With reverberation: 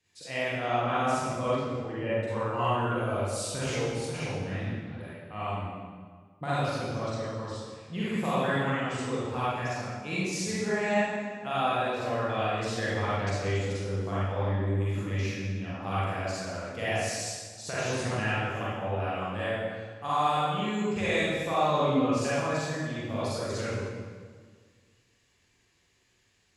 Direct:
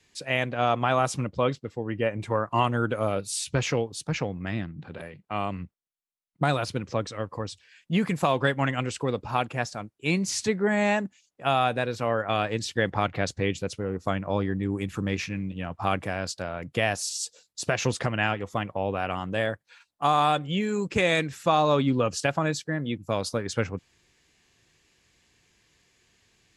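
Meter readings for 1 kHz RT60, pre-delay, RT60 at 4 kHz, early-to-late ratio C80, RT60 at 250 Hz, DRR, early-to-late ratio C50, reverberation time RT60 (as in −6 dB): 1.6 s, 37 ms, 1.3 s, −2.0 dB, 1.9 s, −10.0 dB, −6.0 dB, 1.7 s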